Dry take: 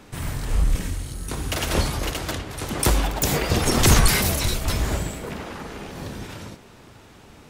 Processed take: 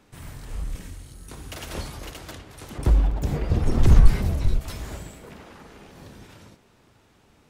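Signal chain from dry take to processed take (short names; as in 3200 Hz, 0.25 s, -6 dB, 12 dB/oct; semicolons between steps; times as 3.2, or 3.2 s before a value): 2.78–4.61 tilt -3.5 dB/oct; gain -11 dB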